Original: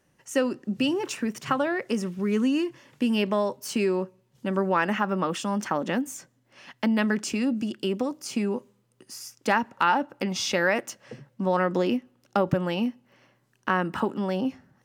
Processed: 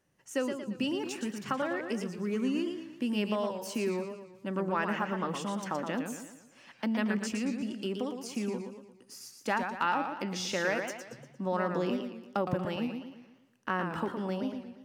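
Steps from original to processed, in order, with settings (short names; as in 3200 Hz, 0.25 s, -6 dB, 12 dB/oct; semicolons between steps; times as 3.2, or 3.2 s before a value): warbling echo 0.116 s, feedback 46%, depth 153 cents, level -6.5 dB; gain -7.5 dB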